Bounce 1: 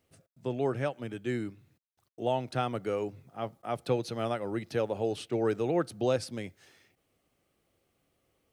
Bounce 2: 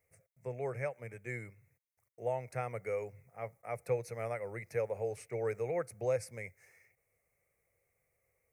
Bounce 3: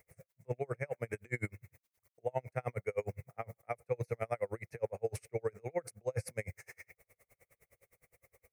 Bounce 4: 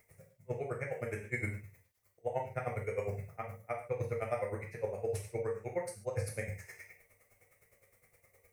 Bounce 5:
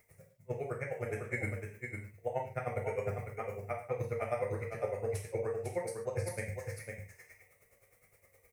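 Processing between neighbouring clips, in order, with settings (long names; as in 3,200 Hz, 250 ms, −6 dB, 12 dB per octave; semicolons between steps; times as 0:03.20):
drawn EQ curve 120 Hz 0 dB, 300 Hz −17 dB, 480 Hz +3 dB, 760 Hz −3 dB, 1,500 Hz −4 dB, 2,200 Hz +10 dB, 3,200 Hz −25 dB, 5,900 Hz −1 dB, 12,000 Hz +5 dB; level −5 dB
reversed playback; downward compressor 6 to 1, threshold −46 dBFS, peak gain reduction 17.5 dB; reversed playback; tremolo with a sine in dB 9.7 Hz, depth 38 dB; level +17.5 dB
reverb whose tail is shaped and stops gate 170 ms falling, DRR −0.5 dB; level −1.5 dB
single-tap delay 502 ms −6 dB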